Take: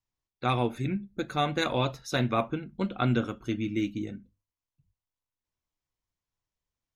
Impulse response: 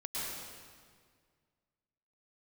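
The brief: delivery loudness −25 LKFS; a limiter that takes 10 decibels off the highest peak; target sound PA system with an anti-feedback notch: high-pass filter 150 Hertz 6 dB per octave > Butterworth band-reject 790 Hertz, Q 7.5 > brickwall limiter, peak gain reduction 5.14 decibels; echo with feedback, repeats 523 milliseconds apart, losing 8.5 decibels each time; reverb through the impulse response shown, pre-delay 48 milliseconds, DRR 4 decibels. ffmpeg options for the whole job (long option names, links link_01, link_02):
-filter_complex "[0:a]alimiter=limit=-23.5dB:level=0:latency=1,aecho=1:1:523|1046|1569|2092:0.376|0.143|0.0543|0.0206,asplit=2[link_01][link_02];[1:a]atrim=start_sample=2205,adelay=48[link_03];[link_02][link_03]afir=irnorm=-1:irlink=0,volume=-7.5dB[link_04];[link_01][link_04]amix=inputs=2:normalize=0,highpass=frequency=150:poles=1,asuperstop=centerf=790:order=8:qfactor=7.5,volume=11dB,alimiter=limit=-14dB:level=0:latency=1"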